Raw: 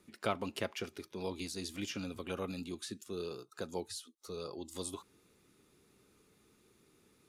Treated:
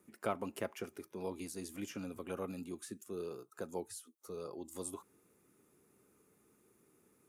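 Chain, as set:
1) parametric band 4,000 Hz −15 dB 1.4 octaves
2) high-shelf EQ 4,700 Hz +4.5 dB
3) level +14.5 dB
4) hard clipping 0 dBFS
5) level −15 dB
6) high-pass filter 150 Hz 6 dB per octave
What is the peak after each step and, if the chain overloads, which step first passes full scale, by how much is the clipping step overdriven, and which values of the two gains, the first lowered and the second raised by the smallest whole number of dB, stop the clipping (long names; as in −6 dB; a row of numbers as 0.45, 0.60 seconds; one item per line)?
−20.5, −20.0, −5.5, −5.5, −20.5, −22.0 dBFS
no step passes full scale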